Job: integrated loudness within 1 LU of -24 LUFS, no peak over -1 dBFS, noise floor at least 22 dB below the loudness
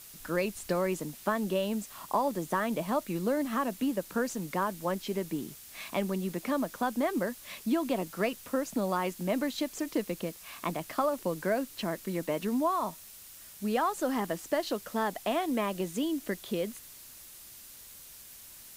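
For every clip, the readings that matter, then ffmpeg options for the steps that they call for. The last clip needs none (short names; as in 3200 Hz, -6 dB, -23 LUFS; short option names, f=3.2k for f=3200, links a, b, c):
noise floor -50 dBFS; noise floor target -54 dBFS; loudness -32.0 LUFS; peak -15.5 dBFS; loudness target -24.0 LUFS
-> -af "afftdn=nr=6:nf=-50"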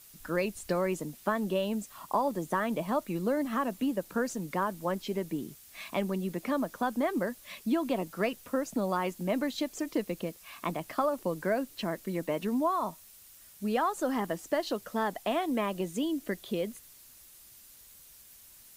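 noise floor -55 dBFS; loudness -32.5 LUFS; peak -15.5 dBFS; loudness target -24.0 LUFS
-> -af "volume=8.5dB"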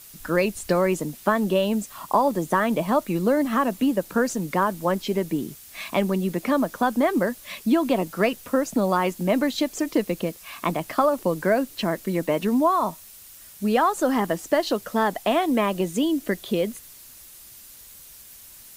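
loudness -24.0 LUFS; peak -7.0 dBFS; noise floor -46 dBFS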